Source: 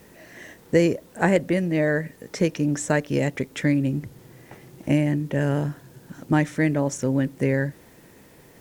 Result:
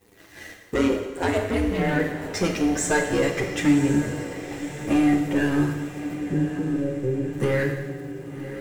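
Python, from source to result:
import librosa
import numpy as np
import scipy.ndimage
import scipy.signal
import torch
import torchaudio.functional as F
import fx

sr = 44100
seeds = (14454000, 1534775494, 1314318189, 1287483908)

p1 = x + 0.45 * np.pad(x, (int(2.5 * sr / 1000.0), 0))[:len(x)]
p2 = fx.leveller(p1, sr, passes=3)
p3 = fx.chorus_voices(p2, sr, voices=2, hz=0.25, base_ms=10, depth_ms=1.1, mix_pct=55)
p4 = fx.ring_mod(p3, sr, carrier_hz=fx.line((0.74, 60.0), (1.98, 150.0)), at=(0.74, 1.98), fade=0.02)
p5 = fx.cheby_ripple(p4, sr, hz=570.0, ripple_db=6, at=(6.15, 7.33))
p6 = p5 + fx.echo_diffused(p5, sr, ms=1071, feedback_pct=53, wet_db=-11, dry=0)
p7 = fx.rev_plate(p6, sr, seeds[0], rt60_s=1.2, hf_ratio=0.95, predelay_ms=0, drr_db=3.0)
y = p7 * librosa.db_to_amplitude(-5.5)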